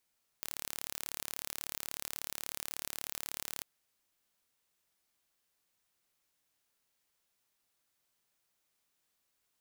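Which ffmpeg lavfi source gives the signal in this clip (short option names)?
-f lavfi -i "aevalsrc='0.266*eq(mod(n,1212),0)':d=3.21:s=44100"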